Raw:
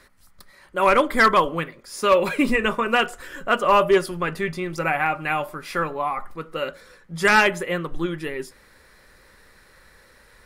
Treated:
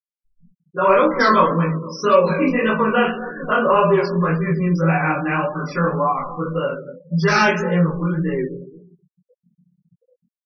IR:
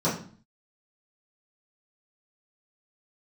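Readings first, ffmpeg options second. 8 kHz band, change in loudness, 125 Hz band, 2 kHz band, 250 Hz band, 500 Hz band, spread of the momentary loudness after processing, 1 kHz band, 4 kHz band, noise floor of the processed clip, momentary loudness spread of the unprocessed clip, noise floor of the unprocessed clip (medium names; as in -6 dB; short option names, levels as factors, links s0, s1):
-2.5 dB, +3.0 dB, +13.5 dB, 0.0 dB, +7.0 dB, +4.0 dB, 10 LU, +2.5 dB, -2.0 dB, under -85 dBFS, 15 LU, -54 dBFS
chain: -filter_complex "[0:a]acrossover=split=380[s0][s1];[s0]acompressor=threshold=0.0398:ratio=6[s2];[s2][s1]amix=inputs=2:normalize=0,asplit=2[s3][s4];[s4]adelay=239,lowpass=f=1800:p=1,volume=0.141,asplit=2[s5][s6];[s6]adelay=239,lowpass=f=1800:p=1,volume=0.4,asplit=2[s7][s8];[s8]adelay=239,lowpass=f=1800:p=1,volume=0.4[s9];[s3][s5][s7][s9]amix=inputs=4:normalize=0[s10];[1:a]atrim=start_sample=2205,afade=t=out:st=0.32:d=0.01,atrim=end_sample=14553[s11];[s10][s11]afir=irnorm=-1:irlink=0,aresample=16000,aresample=44100,afftfilt=real='re*gte(hypot(re,im),0.1)':imag='im*gte(hypot(re,im),0.1)':win_size=1024:overlap=0.75,flanger=delay=16.5:depth=6.1:speed=1.8,highshelf=f=2200:g=10.5,asplit=2[s12][s13];[s13]acompressor=threshold=0.224:ratio=6,volume=1.26[s14];[s12][s14]amix=inputs=2:normalize=0,volume=0.211"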